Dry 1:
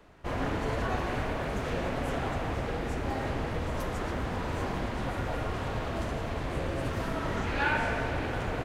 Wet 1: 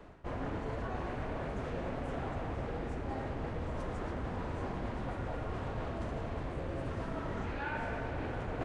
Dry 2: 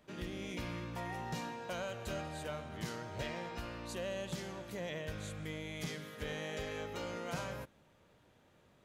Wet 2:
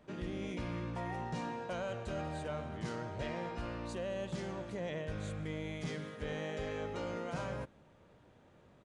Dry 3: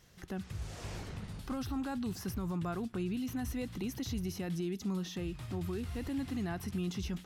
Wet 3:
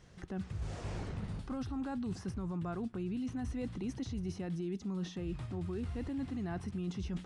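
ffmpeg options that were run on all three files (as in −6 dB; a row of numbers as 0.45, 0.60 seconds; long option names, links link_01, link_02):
-af "highshelf=frequency=2000:gain=-9,areverse,acompressor=threshold=-40dB:ratio=6,areverse,aresample=22050,aresample=44100,volume=5dB"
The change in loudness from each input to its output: −6.5, +1.5, −1.5 LU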